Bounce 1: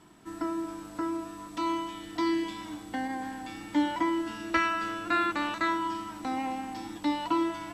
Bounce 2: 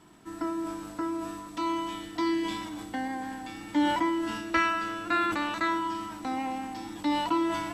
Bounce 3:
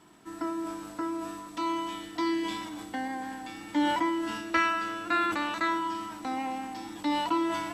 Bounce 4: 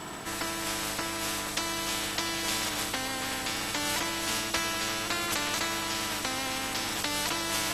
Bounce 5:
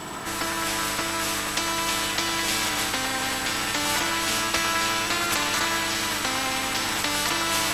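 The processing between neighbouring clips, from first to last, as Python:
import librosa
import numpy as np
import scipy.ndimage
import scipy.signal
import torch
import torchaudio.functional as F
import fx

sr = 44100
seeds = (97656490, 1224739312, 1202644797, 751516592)

y1 = fx.sustainer(x, sr, db_per_s=36.0)
y2 = fx.low_shelf(y1, sr, hz=150.0, db=-7.5)
y3 = fx.spectral_comp(y2, sr, ratio=4.0)
y4 = fx.quant_float(y3, sr, bits=4)
y4 = fx.echo_stepped(y4, sr, ms=105, hz=1200.0, octaves=0.7, feedback_pct=70, wet_db=-0.5)
y4 = F.gain(torch.from_numpy(y4), 4.5).numpy()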